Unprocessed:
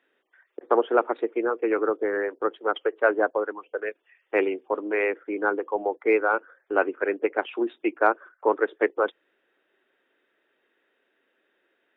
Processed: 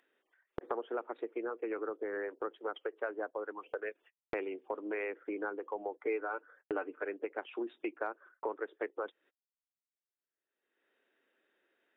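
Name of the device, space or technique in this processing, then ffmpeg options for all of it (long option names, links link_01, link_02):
upward and downward compression: -filter_complex "[0:a]agate=range=-16dB:threshold=-53dB:ratio=16:detection=peak,agate=range=-59dB:threshold=-51dB:ratio=16:detection=peak,acompressor=mode=upward:threshold=-30dB:ratio=2.5,acompressor=threshold=-38dB:ratio=5,asettb=1/sr,asplit=3[link_01][link_02][link_03];[link_01]atrim=end=6.024[link_04];[link_02]atrim=start=6.02:end=7.05,asetpts=PTS-STARTPTS,afade=type=in:duration=0.004:curve=qsin,afade=type=out:start_time=1.026:duration=0.004:curve=qsin,aecho=1:1:6.7:0.48,atrim=end_sample=45423[link_05];[link_03]atrim=start=7.046[link_06];[link_04][link_05]acrossfade=duration=0.004:curve1=hsin:curve2=qsin[link_07];[link_07][link_06]acrossfade=duration=0.004:curve1=qsin:curve2=hsin,volume=1.5dB"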